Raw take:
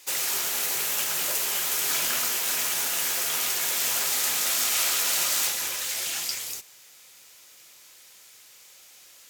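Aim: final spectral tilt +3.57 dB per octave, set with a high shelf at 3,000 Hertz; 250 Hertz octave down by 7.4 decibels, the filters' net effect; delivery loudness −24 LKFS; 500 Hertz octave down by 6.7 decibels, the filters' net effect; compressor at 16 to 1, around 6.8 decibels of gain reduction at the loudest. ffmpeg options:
ffmpeg -i in.wav -af "equalizer=frequency=250:width_type=o:gain=-7.5,equalizer=frequency=500:width_type=o:gain=-7.5,highshelf=frequency=3000:gain=9,acompressor=threshold=-20dB:ratio=16,volume=-2.5dB" out.wav

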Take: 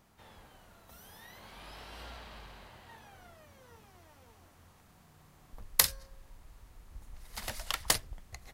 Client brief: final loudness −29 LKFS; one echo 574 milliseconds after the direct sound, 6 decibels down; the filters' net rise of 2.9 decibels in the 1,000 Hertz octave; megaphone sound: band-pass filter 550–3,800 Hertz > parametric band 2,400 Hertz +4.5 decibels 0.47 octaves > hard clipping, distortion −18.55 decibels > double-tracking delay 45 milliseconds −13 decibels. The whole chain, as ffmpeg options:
ffmpeg -i in.wav -filter_complex "[0:a]highpass=550,lowpass=3800,equalizer=frequency=1000:width_type=o:gain=4,equalizer=frequency=2400:width_type=o:width=0.47:gain=4.5,aecho=1:1:574:0.501,asoftclip=type=hard:threshold=-15.5dB,asplit=2[link_01][link_02];[link_02]adelay=45,volume=-13dB[link_03];[link_01][link_03]amix=inputs=2:normalize=0,volume=10.5dB" out.wav

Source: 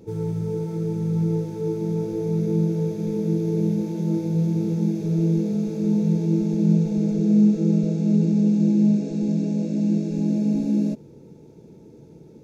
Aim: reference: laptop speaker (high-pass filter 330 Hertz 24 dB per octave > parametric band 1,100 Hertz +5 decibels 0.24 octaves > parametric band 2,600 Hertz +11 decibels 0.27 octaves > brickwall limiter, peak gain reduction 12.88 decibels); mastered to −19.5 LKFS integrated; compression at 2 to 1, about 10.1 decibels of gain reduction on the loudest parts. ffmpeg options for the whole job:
ffmpeg -i in.wav -af "acompressor=threshold=-33dB:ratio=2,highpass=frequency=330:width=0.5412,highpass=frequency=330:width=1.3066,equalizer=frequency=1100:width_type=o:width=0.24:gain=5,equalizer=frequency=2600:width_type=o:width=0.27:gain=11,volume=26.5dB,alimiter=limit=-12dB:level=0:latency=1" out.wav

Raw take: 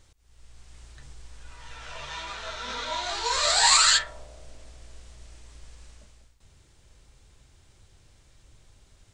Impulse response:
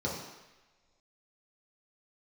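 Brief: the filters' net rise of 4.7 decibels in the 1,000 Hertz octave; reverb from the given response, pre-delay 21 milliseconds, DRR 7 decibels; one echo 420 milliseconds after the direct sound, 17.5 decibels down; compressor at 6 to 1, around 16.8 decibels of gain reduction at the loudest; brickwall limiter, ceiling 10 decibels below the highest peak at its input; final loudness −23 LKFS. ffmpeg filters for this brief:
-filter_complex "[0:a]equalizer=frequency=1000:width_type=o:gain=5.5,acompressor=threshold=-32dB:ratio=6,alimiter=level_in=7dB:limit=-24dB:level=0:latency=1,volume=-7dB,aecho=1:1:420:0.133,asplit=2[link_01][link_02];[1:a]atrim=start_sample=2205,adelay=21[link_03];[link_02][link_03]afir=irnorm=-1:irlink=0,volume=-13.5dB[link_04];[link_01][link_04]amix=inputs=2:normalize=0,volume=18.5dB"

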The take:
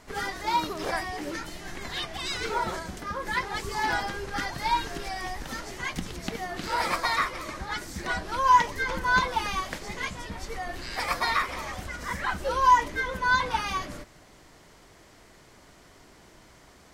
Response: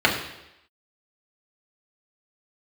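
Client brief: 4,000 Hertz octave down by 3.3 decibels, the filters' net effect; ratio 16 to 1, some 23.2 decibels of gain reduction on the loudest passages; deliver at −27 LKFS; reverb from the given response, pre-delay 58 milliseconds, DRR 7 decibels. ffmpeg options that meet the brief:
-filter_complex "[0:a]equalizer=frequency=4000:width_type=o:gain=-4,acompressor=threshold=-38dB:ratio=16,asplit=2[link_01][link_02];[1:a]atrim=start_sample=2205,adelay=58[link_03];[link_02][link_03]afir=irnorm=-1:irlink=0,volume=-27dB[link_04];[link_01][link_04]amix=inputs=2:normalize=0,volume=14.5dB"

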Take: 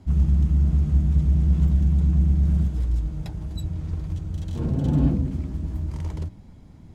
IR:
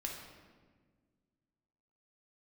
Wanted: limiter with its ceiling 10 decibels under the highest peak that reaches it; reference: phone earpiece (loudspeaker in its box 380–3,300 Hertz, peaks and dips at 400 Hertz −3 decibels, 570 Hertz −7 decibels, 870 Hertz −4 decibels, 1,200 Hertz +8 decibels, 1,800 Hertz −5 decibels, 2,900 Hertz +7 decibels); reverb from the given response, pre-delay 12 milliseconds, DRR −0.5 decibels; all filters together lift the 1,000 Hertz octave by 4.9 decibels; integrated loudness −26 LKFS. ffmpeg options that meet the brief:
-filter_complex "[0:a]equalizer=frequency=1000:width_type=o:gain=6.5,alimiter=limit=-19.5dB:level=0:latency=1,asplit=2[link_01][link_02];[1:a]atrim=start_sample=2205,adelay=12[link_03];[link_02][link_03]afir=irnorm=-1:irlink=0,volume=0.5dB[link_04];[link_01][link_04]amix=inputs=2:normalize=0,highpass=380,equalizer=frequency=400:width_type=q:width=4:gain=-3,equalizer=frequency=570:width_type=q:width=4:gain=-7,equalizer=frequency=870:width_type=q:width=4:gain=-4,equalizer=frequency=1200:width_type=q:width=4:gain=8,equalizer=frequency=1800:width_type=q:width=4:gain=-5,equalizer=frequency=2900:width_type=q:width=4:gain=7,lowpass=frequency=3300:width=0.5412,lowpass=frequency=3300:width=1.3066,volume=15dB"

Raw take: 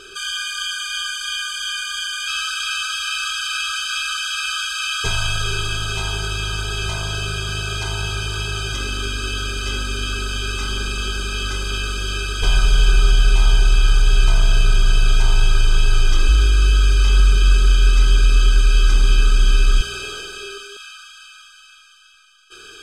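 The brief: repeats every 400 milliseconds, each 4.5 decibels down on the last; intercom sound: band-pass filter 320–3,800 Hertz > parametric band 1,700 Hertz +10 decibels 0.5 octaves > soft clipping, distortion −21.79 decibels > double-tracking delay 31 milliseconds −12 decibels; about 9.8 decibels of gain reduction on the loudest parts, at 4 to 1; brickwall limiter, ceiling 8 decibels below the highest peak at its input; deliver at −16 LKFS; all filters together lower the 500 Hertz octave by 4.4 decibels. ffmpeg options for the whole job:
ffmpeg -i in.wav -filter_complex "[0:a]equalizer=frequency=500:width_type=o:gain=-4.5,acompressor=threshold=-21dB:ratio=4,alimiter=limit=-21dB:level=0:latency=1,highpass=320,lowpass=3800,equalizer=frequency=1700:width_type=o:width=0.5:gain=10,aecho=1:1:400|800|1200|1600|2000|2400|2800|3200|3600:0.596|0.357|0.214|0.129|0.0772|0.0463|0.0278|0.0167|0.01,asoftclip=threshold=-18.5dB,asplit=2[link_01][link_02];[link_02]adelay=31,volume=-12dB[link_03];[link_01][link_03]amix=inputs=2:normalize=0,volume=13dB" out.wav

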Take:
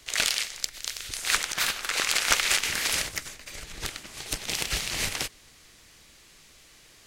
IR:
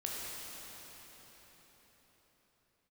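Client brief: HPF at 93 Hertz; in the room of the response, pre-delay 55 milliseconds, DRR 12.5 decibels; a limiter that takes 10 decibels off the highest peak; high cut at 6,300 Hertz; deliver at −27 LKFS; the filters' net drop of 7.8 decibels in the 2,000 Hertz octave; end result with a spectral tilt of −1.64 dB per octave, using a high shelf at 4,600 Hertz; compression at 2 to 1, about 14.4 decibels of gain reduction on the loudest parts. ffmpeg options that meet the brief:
-filter_complex "[0:a]highpass=93,lowpass=6300,equalizer=frequency=2000:width_type=o:gain=-8.5,highshelf=frequency=4600:gain=-7,acompressor=threshold=-50dB:ratio=2,alimiter=level_in=9dB:limit=-24dB:level=0:latency=1,volume=-9dB,asplit=2[link_01][link_02];[1:a]atrim=start_sample=2205,adelay=55[link_03];[link_02][link_03]afir=irnorm=-1:irlink=0,volume=-15.5dB[link_04];[link_01][link_04]amix=inputs=2:normalize=0,volume=19.5dB"

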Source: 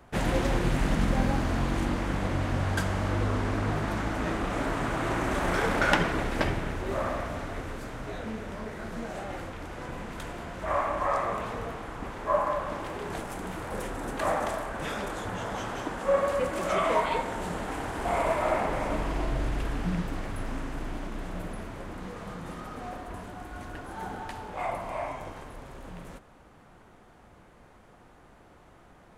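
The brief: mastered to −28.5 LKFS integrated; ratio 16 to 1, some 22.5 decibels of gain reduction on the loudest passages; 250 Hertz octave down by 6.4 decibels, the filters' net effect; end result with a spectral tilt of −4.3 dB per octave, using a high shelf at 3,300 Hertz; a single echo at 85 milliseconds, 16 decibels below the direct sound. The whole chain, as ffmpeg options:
ffmpeg -i in.wav -af "equalizer=frequency=250:width_type=o:gain=-9,highshelf=frequency=3300:gain=5,acompressor=threshold=-41dB:ratio=16,aecho=1:1:85:0.158,volume=17dB" out.wav

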